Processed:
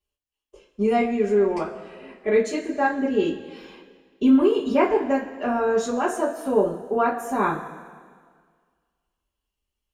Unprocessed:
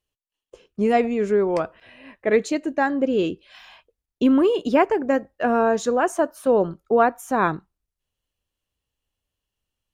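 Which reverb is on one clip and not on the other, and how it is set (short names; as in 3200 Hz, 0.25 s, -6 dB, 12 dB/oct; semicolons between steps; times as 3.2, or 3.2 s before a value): two-slope reverb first 0.21 s, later 1.8 s, from -18 dB, DRR -9 dB; gain -11.5 dB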